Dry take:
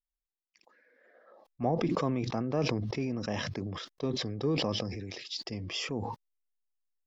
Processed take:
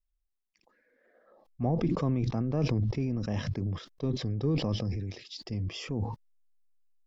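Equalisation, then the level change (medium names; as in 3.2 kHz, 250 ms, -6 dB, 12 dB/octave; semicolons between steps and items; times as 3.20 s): bass shelf 75 Hz +11 dB; bass shelf 290 Hz +10.5 dB; -5.5 dB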